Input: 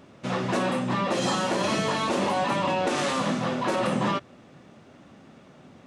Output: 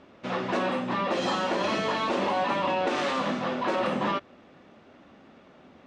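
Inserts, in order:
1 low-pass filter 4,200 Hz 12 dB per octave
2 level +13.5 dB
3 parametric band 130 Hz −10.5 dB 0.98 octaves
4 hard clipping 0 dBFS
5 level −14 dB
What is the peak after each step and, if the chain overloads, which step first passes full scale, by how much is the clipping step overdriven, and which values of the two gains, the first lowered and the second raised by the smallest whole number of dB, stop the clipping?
−16.0, −2.5, −2.0, −2.0, −16.0 dBFS
no step passes full scale

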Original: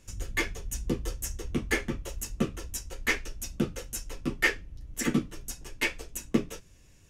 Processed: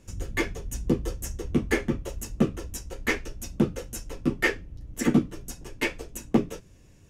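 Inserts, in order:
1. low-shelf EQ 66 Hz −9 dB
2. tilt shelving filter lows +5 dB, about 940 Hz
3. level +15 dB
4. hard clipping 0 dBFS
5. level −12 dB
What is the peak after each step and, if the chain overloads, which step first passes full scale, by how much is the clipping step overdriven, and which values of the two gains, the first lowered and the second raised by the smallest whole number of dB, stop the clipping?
−10.0, −7.5, +7.5, 0.0, −12.0 dBFS
step 3, 7.5 dB
step 3 +7 dB, step 5 −4 dB

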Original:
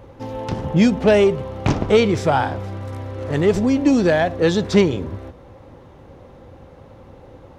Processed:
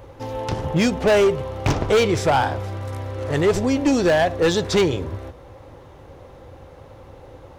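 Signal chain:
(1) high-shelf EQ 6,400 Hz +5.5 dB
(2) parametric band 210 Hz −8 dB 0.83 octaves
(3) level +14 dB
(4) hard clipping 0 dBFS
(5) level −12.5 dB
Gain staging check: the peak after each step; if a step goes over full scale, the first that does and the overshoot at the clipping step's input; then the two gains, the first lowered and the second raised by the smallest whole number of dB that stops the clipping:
−3.5, −4.5, +9.5, 0.0, −12.5 dBFS
step 3, 9.5 dB
step 3 +4 dB, step 5 −2.5 dB

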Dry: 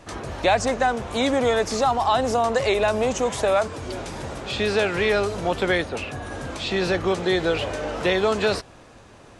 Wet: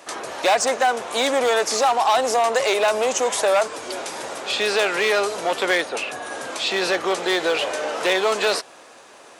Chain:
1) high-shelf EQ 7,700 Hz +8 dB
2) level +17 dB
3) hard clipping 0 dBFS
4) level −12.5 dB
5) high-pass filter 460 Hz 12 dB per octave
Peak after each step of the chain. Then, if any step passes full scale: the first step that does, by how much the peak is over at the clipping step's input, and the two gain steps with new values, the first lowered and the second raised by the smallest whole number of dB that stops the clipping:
−8.5, +8.5, 0.0, −12.5, −7.5 dBFS
step 2, 8.5 dB
step 2 +8 dB, step 4 −3.5 dB

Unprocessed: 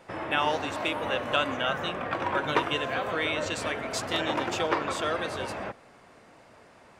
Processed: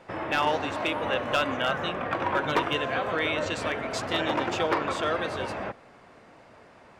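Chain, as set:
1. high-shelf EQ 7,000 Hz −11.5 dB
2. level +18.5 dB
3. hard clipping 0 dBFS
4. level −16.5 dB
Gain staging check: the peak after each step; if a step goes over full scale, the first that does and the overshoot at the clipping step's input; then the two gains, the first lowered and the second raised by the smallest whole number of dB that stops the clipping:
−10.5, +8.0, 0.0, −16.5 dBFS
step 2, 8.0 dB
step 2 +10.5 dB, step 4 −8.5 dB

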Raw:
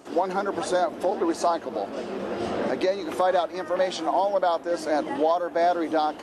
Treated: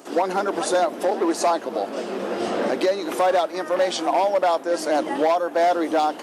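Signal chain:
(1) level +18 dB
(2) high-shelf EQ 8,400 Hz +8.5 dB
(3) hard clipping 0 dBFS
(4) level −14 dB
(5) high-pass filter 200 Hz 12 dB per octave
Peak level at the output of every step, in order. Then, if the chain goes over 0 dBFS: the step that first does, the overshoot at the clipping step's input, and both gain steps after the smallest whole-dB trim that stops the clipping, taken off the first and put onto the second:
+6.5, +7.0, 0.0, −14.0, −10.5 dBFS
step 1, 7.0 dB
step 1 +11 dB, step 4 −7 dB

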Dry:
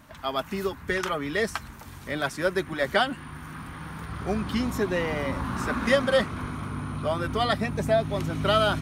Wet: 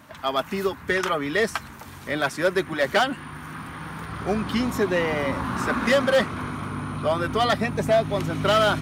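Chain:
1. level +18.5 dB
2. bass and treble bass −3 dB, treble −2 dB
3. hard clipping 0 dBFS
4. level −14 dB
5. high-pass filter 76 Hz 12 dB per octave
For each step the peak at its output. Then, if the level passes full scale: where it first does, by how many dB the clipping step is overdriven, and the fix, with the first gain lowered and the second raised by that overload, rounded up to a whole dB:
+9.5, +9.5, 0.0, −14.0, −11.0 dBFS
step 1, 9.5 dB
step 1 +8.5 dB, step 4 −4 dB

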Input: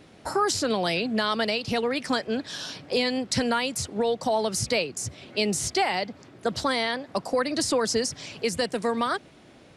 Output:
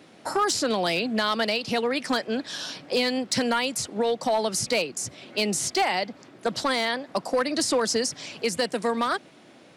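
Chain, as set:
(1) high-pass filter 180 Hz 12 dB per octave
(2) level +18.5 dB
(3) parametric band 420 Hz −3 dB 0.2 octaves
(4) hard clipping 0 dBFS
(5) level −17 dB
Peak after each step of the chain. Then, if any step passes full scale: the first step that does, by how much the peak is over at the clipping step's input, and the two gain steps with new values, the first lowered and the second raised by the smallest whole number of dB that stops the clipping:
−13.0, +5.5, +5.5, 0.0, −17.0 dBFS
step 2, 5.5 dB
step 2 +12.5 dB, step 5 −11 dB

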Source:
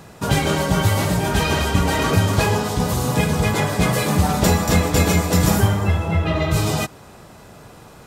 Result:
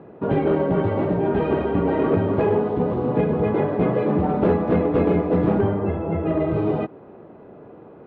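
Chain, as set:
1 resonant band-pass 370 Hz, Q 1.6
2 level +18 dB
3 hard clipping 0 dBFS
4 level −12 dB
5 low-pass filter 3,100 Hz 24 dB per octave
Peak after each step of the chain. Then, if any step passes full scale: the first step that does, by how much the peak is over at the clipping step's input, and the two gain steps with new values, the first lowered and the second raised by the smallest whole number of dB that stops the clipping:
−11.5, +6.5, 0.0, −12.0, −11.5 dBFS
step 2, 6.5 dB
step 2 +11 dB, step 4 −5 dB

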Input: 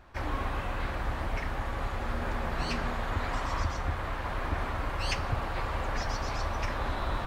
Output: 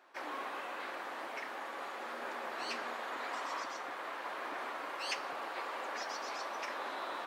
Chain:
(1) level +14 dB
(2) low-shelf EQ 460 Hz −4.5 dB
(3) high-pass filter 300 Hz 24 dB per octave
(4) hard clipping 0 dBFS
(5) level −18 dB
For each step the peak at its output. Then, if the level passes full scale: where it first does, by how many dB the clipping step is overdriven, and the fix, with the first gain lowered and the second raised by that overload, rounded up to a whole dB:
−3.5, −4.5, −5.0, −5.0, −23.0 dBFS
no step passes full scale

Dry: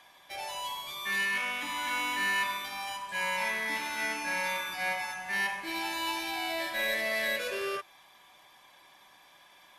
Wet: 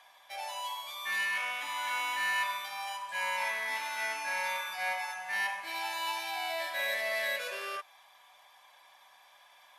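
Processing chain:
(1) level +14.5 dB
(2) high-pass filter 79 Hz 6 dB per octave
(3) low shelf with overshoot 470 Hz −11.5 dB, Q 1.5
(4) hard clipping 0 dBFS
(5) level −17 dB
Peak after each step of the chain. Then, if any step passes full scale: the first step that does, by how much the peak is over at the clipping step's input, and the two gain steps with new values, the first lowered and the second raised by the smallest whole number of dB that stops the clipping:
−4.5, −4.5, −3.5, −3.5, −20.5 dBFS
no step passes full scale

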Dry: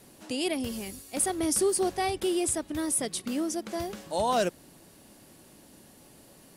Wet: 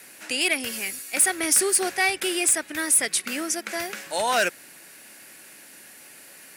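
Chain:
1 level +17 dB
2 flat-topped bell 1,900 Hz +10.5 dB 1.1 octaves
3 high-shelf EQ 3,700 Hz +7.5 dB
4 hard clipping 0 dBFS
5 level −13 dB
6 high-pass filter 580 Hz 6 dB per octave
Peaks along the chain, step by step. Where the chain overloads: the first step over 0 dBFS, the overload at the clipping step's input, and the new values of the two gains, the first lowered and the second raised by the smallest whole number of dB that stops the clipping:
+2.5, +5.0, +9.0, 0.0, −13.0, −9.5 dBFS
step 1, 9.0 dB
step 1 +8 dB, step 5 −4 dB

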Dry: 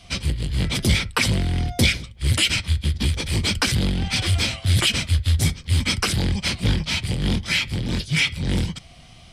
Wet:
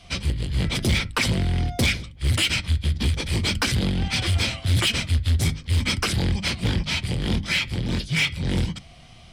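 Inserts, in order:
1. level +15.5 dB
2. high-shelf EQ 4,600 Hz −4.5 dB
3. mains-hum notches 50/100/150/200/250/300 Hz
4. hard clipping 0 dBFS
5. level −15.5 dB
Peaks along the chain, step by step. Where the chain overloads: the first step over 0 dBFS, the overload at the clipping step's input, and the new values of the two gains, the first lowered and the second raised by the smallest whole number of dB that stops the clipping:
+10.0, +9.5, +9.5, 0.0, −15.5 dBFS
step 1, 9.5 dB
step 1 +5.5 dB, step 5 −5.5 dB

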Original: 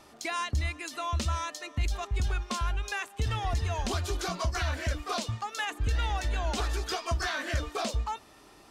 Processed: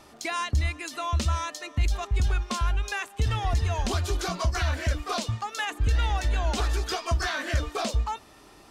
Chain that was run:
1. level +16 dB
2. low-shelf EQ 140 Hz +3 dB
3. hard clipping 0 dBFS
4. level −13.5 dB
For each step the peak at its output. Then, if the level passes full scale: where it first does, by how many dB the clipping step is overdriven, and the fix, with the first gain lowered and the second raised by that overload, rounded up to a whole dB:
−4.5, −2.0, −2.0, −15.5 dBFS
no step passes full scale

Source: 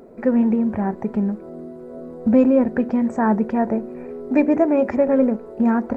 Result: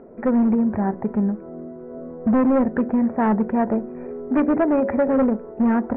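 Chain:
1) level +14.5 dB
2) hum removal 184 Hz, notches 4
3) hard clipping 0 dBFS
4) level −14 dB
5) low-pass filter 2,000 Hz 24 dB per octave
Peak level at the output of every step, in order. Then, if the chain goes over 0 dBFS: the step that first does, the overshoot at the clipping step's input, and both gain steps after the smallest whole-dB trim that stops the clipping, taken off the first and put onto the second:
+9.5, +9.5, 0.0, −14.0, −12.5 dBFS
step 1, 9.5 dB
step 1 +4.5 dB, step 4 −4 dB

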